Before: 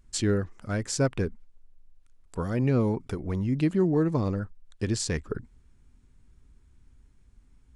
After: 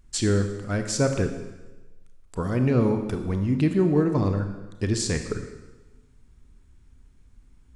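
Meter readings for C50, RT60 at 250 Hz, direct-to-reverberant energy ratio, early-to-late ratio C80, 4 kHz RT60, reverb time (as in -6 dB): 7.5 dB, 1.1 s, 6.5 dB, 9.5 dB, 1.1 s, 1.1 s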